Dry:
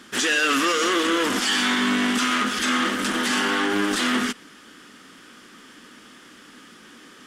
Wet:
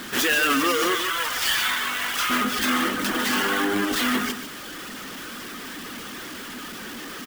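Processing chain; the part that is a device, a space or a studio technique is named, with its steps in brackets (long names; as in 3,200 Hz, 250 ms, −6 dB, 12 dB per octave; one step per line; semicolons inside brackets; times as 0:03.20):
0:00.95–0:02.30: high-pass filter 920 Hz 12 dB per octave
reverb reduction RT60 0.99 s
early CD player with a faulty converter (converter with a step at zero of −32 dBFS; converter with an unsteady clock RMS 0.024 ms)
single-tap delay 147 ms −9.5 dB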